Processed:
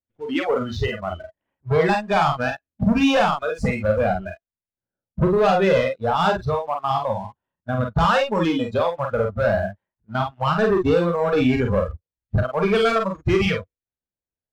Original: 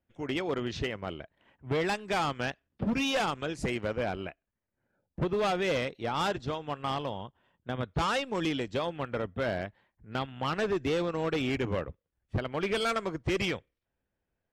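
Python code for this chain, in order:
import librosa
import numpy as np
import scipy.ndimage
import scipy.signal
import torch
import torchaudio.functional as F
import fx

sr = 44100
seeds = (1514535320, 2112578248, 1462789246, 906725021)

y = fx.lowpass(x, sr, hz=1600.0, slope=6)
y = fx.noise_reduce_blind(y, sr, reduce_db=22)
y = fx.leveller(y, sr, passes=1)
y = fx.room_early_taps(y, sr, ms=(36, 47), db=(-8.5, -5.0))
y = y * librosa.db_to_amplitude(9.0)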